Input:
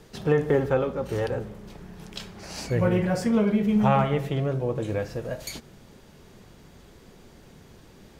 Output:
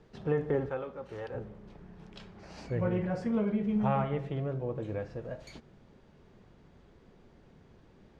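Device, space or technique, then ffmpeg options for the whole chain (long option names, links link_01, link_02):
through cloth: -filter_complex "[0:a]asettb=1/sr,asplit=3[link_01][link_02][link_03];[link_01]atrim=end=0.694[link_04];[link_02]atrim=start=0.69:end=1.34,asetpts=PTS-STARTPTS,afade=type=in:duration=0.004:curve=qsin,afade=type=out:start_time=0.646:duration=0.004:curve=qsin,lowshelf=frequency=480:gain=-10[link_05];[link_03]atrim=start=1.336[link_06];[link_04][link_05]acrossfade=duration=0.004:curve1=hsin:curve2=qsin[link_07];[link_07][link_06]acrossfade=duration=0.004:curve1=qsin:curve2=hsin,lowpass=7000,highshelf=frequency=3600:gain=-13.5,volume=-7.5dB"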